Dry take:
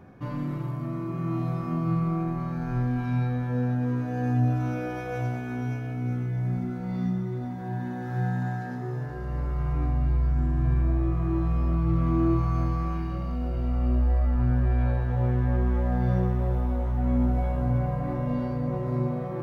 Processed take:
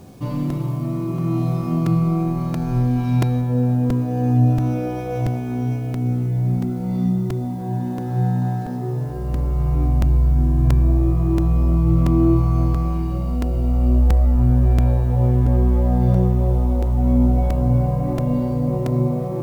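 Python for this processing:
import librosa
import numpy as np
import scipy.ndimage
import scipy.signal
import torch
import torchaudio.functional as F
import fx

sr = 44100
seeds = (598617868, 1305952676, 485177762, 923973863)

y = fx.high_shelf(x, sr, hz=2600.0, db=fx.steps((0.0, 5.0), (3.4, -3.5)))
y = fx.echo_thinned(y, sr, ms=260, feedback_pct=54, hz=280.0, wet_db=-24.0)
y = fx.quant_dither(y, sr, seeds[0], bits=10, dither='none')
y = fx.peak_eq(y, sr, hz=1600.0, db=-12.5, octaves=1.0)
y = fx.buffer_crackle(y, sr, first_s=0.5, period_s=0.68, block=128, kind='repeat')
y = y * librosa.db_to_amplitude(8.0)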